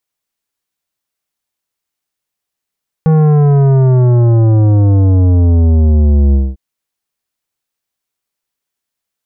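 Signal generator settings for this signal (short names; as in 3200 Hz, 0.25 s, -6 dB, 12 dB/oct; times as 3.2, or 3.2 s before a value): sub drop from 160 Hz, over 3.50 s, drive 12 dB, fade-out 0.22 s, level -7 dB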